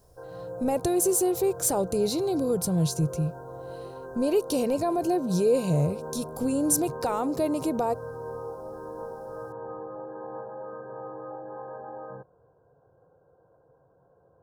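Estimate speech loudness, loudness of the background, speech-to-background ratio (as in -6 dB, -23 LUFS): -26.5 LUFS, -39.0 LUFS, 12.5 dB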